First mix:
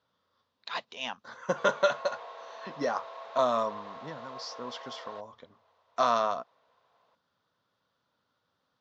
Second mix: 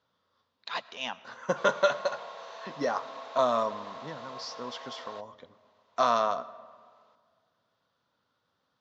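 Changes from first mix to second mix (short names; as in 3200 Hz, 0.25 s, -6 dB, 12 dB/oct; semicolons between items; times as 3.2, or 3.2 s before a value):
background: add high shelf 4000 Hz +10.5 dB; reverb: on, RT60 1.9 s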